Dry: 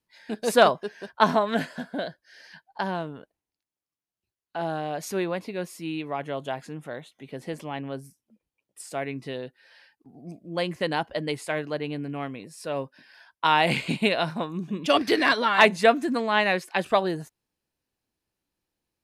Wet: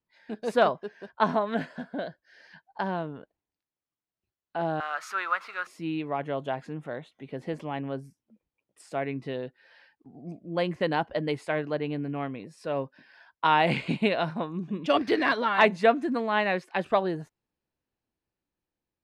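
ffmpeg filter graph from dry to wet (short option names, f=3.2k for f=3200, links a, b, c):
-filter_complex "[0:a]asettb=1/sr,asplit=3[a][b][c];[a]atrim=end=4.804[d];[b]atrim=start=4.8:end=5.67,asetpts=PTS-STARTPTS,afade=t=in:d=0.004:c=qsin,afade=t=out:st=0.866:d=0.004:c=qsin,aeval=exprs='val(0)+0.5*0.00631*sgn(val(0))':c=same,highpass=f=1.3k:t=q:w=10[e];[c]atrim=start=5.666[f];[d][e]acrossfade=d=0.004:c1=hsin:c2=qsin[g];[g][f]acrossfade=d=0.004:c1=qsin:c2=hsin,aemphasis=mode=reproduction:type=75fm,dynaudnorm=f=450:g=7:m=5dB,volume=-5dB"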